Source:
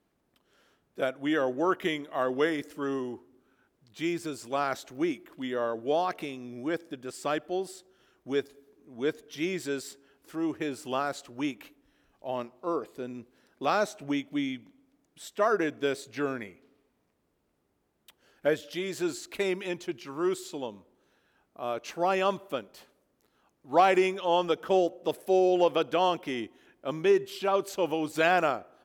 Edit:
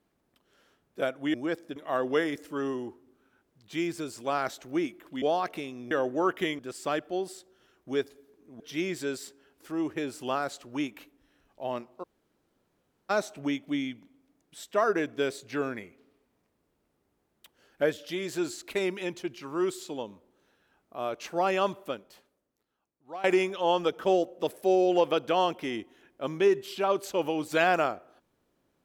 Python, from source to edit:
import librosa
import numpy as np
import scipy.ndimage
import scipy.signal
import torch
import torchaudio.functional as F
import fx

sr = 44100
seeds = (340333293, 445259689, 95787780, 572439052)

y = fx.edit(x, sr, fx.swap(start_s=1.34, length_s=0.68, other_s=6.56, other_length_s=0.42),
    fx.cut(start_s=5.48, length_s=0.39),
    fx.cut(start_s=8.99, length_s=0.25),
    fx.room_tone_fill(start_s=12.67, length_s=1.07, crossfade_s=0.02),
    fx.fade_out_to(start_s=22.42, length_s=1.46, curve='qua', floor_db=-18.5), tone=tone)